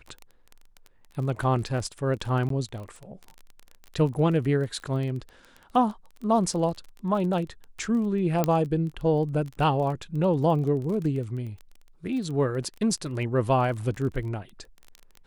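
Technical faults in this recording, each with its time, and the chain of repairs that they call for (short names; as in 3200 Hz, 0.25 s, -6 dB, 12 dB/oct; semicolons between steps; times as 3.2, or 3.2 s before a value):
crackle 23/s -33 dBFS
2.49–2.5 gap 13 ms
8.44 pop -10 dBFS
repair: de-click; interpolate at 2.49, 13 ms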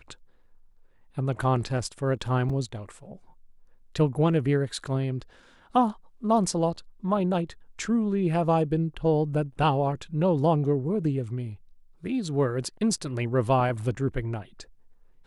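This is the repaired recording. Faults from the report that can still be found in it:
none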